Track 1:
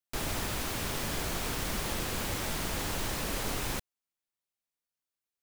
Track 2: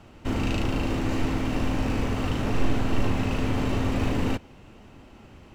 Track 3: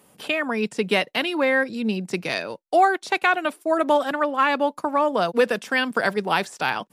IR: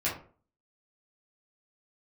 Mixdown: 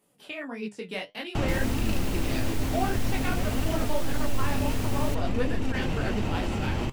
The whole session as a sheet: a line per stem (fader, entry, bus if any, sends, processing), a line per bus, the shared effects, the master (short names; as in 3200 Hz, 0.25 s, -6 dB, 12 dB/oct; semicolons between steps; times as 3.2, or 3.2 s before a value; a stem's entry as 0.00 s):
+0.5 dB, 1.35 s, no send, dry
+0.5 dB, 1.35 s, no send, fast leveller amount 100%; auto duck -10 dB, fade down 1.80 s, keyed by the third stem
-4.5 dB, 0.00 s, no send, detuned doubles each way 58 cents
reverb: off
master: low shelf 110 Hz +5.5 dB; flange 0.54 Hz, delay 2.6 ms, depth 9.1 ms, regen +69%; bell 1200 Hz -3 dB 0.86 oct